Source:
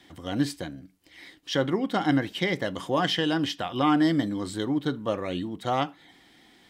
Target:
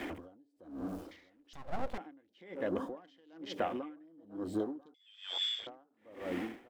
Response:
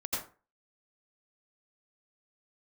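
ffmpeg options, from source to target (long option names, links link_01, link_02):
-filter_complex "[0:a]aeval=exprs='val(0)+0.5*0.0168*sgn(val(0))':channel_layout=same,equalizer=frequency=140:width=3.6:gain=-14.5,asplit=2[link_01][link_02];[link_02]adelay=991.3,volume=-10dB,highshelf=frequency=4000:gain=-22.3[link_03];[link_01][link_03]amix=inputs=2:normalize=0,asettb=1/sr,asplit=3[link_04][link_05][link_06];[link_04]atrim=end=4.944[link_07];[link_05]atrim=start=4.94:end=5.67,asetpts=PTS-STARTPTS,afade=type=in:duration=0.004:curve=qsin,afade=type=out:start_time=0.726:duration=0.004:curve=qsin,lowpass=frequency=3100:width_type=q:width=0.5098,lowpass=frequency=3100:width_type=q:width=0.6013,lowpass=frequency=3100:width_type=q:width=0.9,lowpass=frequency=3100:width_type=q:width=2.563,afreqshift=-3700[link_08];[link_06]atrim=start=5.666[link_09];[link_07][link_08]acrossfade=duration=0.004:curve1=hsin:curve2=qsin[link_10];[link_10][link_09]acrossfade=duration=0.004:curve1=qsin:curve2=hsin,equalizer=frequency=125:width_type=o:width=1:gain=-4,equalizer=frequency=250:width_type=o:width=1:gain=4,equalizer=frequency=500:width_type=o:width=1:gain=6,acompressor=threshold=-31dB:ratio=4,asettb=1/sr,asplit=3[link_11][link_12][link_13];[link_11]atrim=end=3.824[link_14];[link_12]atrim=start=3.82:end=4.25,asetpts=PTS-STARTPTS,afade=type=in:duration=0.004:curve=qsin,afade=type=out:start_time=0.426:duration=0.004:curve=qsin,aecho=1:1:6.1:0.85,atrim=end_sample=18963[link_15];[link_13]atrim=start=4.246[link_16];[link_14][link_15]acrossfade=duration=0.004:curve1=hsin:curve2=qsin[link_17];[link_17][link_16]acrossfade=duration=0.004:curve1=qsin:curve2=hsin,afwtdn=0.00794,asettb=1/sr,asplit=3[link_18][link_19][link_20];[link_18]atrim=end=1.534[link_21];[link_19]atrim=start=1.53:end=1.98,asetpts=PTS-STARTPTS,afade=type=in:duration=0.004:curve=qsin,afade=type=out:start_time=0.446:duration=0.004:curve=qsin,aeval=exprs='abs(val(0))':channel_layout=same[link_22];[link_20]atrim=start=1.976[link_23];[link_21][link_22]acrossfade=duration=0.004:curve1=hsin:curve2=qsin[link_24];[link_24][link_23]acrossfade=duration=0.004:curve1=qsin:curve2=hsin,aeval=exprs='val(0)*pow(10,-34*(0.5-0.5*cos(2*PI*1.1*n/s))/20)':channel_layout=same,volume=1dB"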